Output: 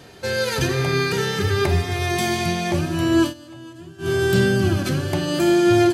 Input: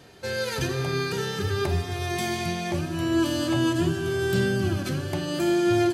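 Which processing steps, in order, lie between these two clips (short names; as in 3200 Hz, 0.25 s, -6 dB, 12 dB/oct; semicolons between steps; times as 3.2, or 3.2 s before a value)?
0.67–2.11 bell 2100 Hz +6 dB 0.32 oct; 3.22–4.1 dip -22 dB, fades 0.12 s; gain +6 dB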